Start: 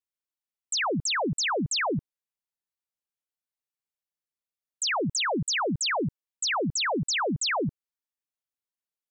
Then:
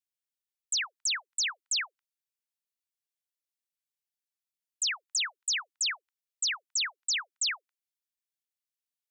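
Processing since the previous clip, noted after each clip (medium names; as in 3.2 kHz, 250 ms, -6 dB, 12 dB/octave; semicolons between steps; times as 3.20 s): Bessel high-pass 2.3 kHz, order 6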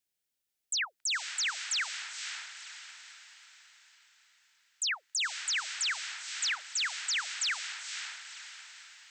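peaking EQ 1.1 kHz -10 dB 0.34 oct; peak limiter -34 dBFS, peak gain reduction 10 dB; echo that smears into a reverb 514 ms, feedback 46%, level -7 dB; trim +7 dB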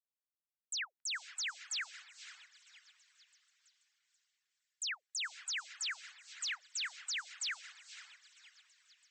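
harmonic-percussive separation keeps percussive; repeats whose band climbs or falls 486 ms, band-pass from 1.6 kHz, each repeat 0.7 oct, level -11.5 dB; upward expansion 1.5:1, over -49 dBFS; trim -7 dB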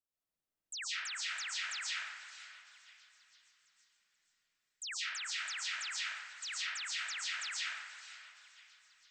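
bass shelf 490 Hz +9 dB; reverberation RT60 1.4 s, pre-delay 90 ms, DRR -7 dB; trim -5 dB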